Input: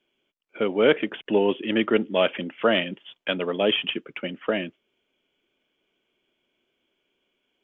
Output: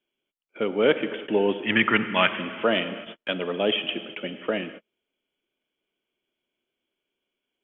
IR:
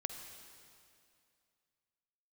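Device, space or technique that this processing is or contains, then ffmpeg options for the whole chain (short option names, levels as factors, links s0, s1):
keyed gated reverb: -filter_complex "[0:a]asettb=1/sr,asplit=3[s0][s1][s2];[s0]atrim=end=1.664[s3];[s1]atrim=start=1.66:end=2.29,asetpts=PTS-STARTPTS,afade=t=in:d=0.004:c=qsin,afade=t=out:st=0.626:d=0.004:c=qsin,equalizer=f=125:t=o:w=1:g=11,equalizer=f=500:t=o:w=1:g=-11,equalizer=f=1000:t=o:w=1:g=9,equalizer=f=2000:t=o:w=1:g=11[s4];[s2]atrim=start=2.286[s5];[s3][s4]acrossfade=d=0.004:c1=hsin:c2=qsin[s6];[s6][s5]acrossfade=d=0.004:c1=qsin:c2=hsin,asplit=3[s7][s8][s9];[1:a]atrim=start_sample=2205[s10];[s8][s10]afir=irnorm=-1:irlink=0[s11];[s9]apad=whole_len=336920[s12];[s11][s12]sidechaingate=range=0.00447:threshold=0.00631:ratio=16:detection=peak,volume=1.5[s13];[s7][s13]amix=inputs=2:normalize=0,volume=0.355"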